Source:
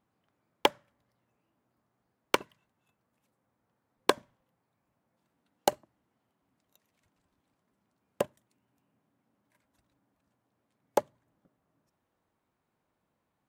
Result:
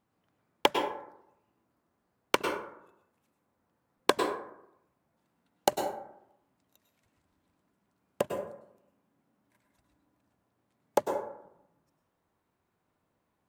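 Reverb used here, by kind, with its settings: plate-style reverb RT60 0.79 s, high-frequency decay 0.4×, pre-delay 90 ms, DRR 3.5 dB

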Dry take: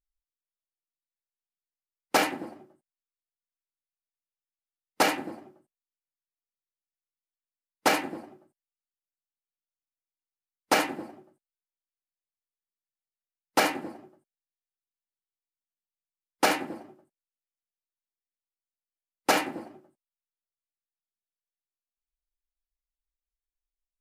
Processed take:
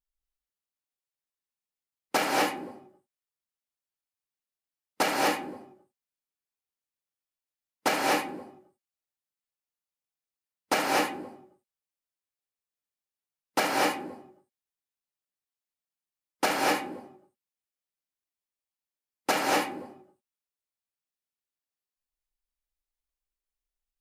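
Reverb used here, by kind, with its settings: gated-style reverb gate 270 ms rising, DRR -2.5 dB; trim -3.5 dB

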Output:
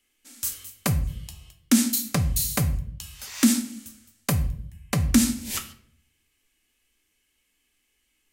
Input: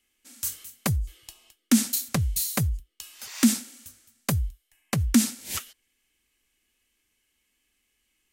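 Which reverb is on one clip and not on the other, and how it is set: simulated room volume 89 m³, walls mixed, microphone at 0.35 m; trim +1 dB

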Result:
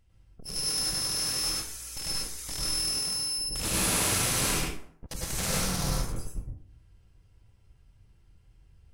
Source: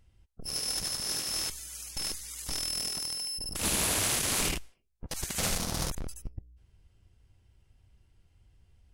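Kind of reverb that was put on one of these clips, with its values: plate-style reverb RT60 0.6 s, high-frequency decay 0.6×, pre-delay 90 ms, DRR -4.5 dB; trim -3 dB

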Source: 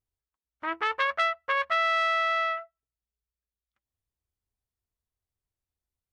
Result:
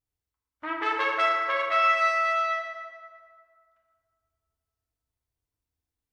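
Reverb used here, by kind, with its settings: FDN reverb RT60 2.1 s, low-frequency decay 1.2×, high-frequency decay 0.55×, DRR -3 dB; trim -3 dB

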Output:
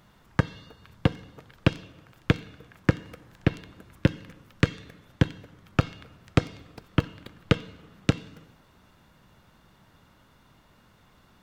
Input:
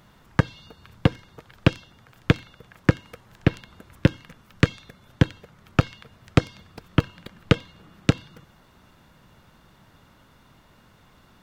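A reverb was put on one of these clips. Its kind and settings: plate-style reverb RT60 1.2 s, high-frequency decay 0.9×, DRR 17.5 dB; trim -3.5 dB

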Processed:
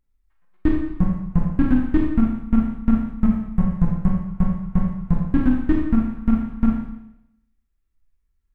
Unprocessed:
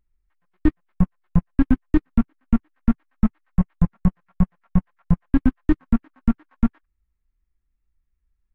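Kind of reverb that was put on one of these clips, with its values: Schroeder reverb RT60 0.84 s, combs from 28 ms, DRR -1 dB; trim -1.5 dB

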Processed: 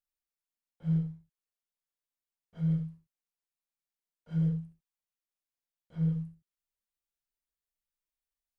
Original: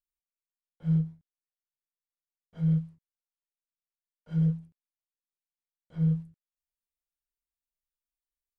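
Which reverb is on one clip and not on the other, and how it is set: gated-style reverb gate 100 ms flat, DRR 5 dB; trim -2.5 dB

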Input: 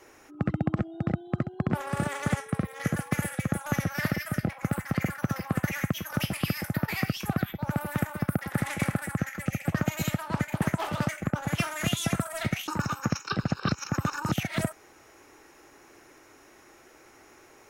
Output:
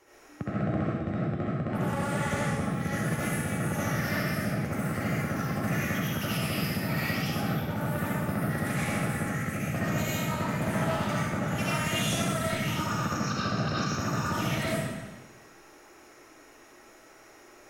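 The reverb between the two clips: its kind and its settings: algorithmic reverb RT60 1.3 s, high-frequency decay 0.95×, pre-delay 40 ms, DRR -8.5 dB; trim -7.5 dB

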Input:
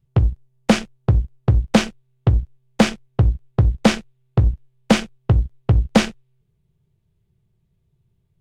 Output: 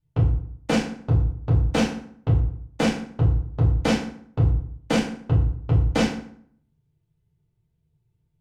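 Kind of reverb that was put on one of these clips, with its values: FDN reverb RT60 0.6 s, low-frequency decay 1.2×, high-frequency decay 0.7×, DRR -6 dB; trim -12 dB

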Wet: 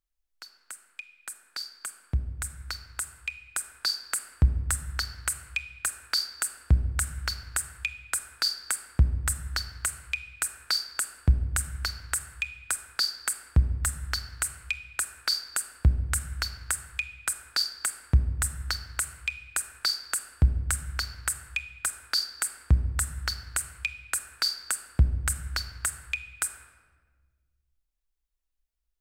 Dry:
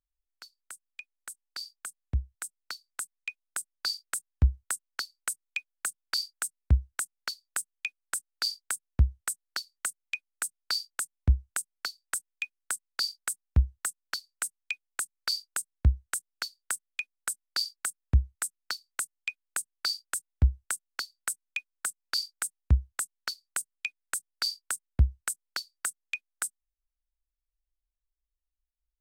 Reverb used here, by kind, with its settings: simulated room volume 1400 m³, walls mixed, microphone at 0.64 m; trim +3 dB

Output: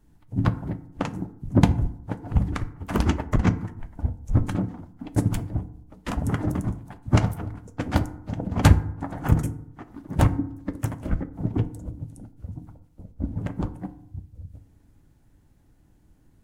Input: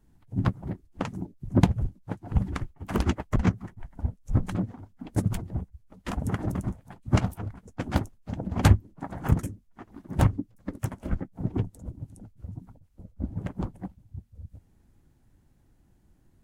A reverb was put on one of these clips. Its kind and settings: FDN reverb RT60 0.74 s, low-frequency decay 1.2×, high-frequency decay 0.45×, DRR 10.5 dB; trim +3 dB

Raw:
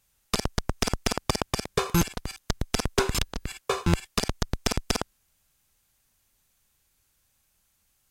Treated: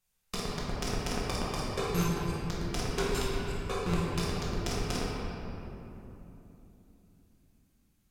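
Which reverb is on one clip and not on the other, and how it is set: simulated room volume 170 m³, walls hard, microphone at 0.99 m; trim -12.5 dB

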